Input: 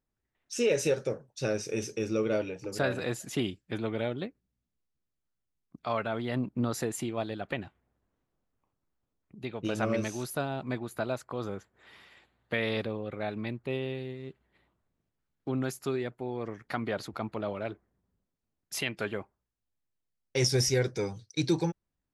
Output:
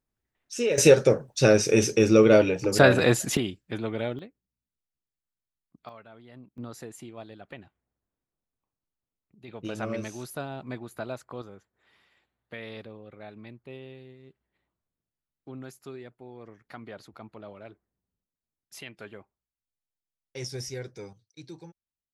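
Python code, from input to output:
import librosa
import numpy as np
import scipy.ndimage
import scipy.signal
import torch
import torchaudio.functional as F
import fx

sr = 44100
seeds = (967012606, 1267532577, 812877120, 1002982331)

y = fx.gain(x, sr, db=fx.steps((0.0, 0.5), (0.78, 12.0), (3.37, 1.5), (4.19, -8.0), (5.89, -17.5), (6.58, -9.5), (9.48, -3.0), (11.42, -10.0), (21.13, -17.0)))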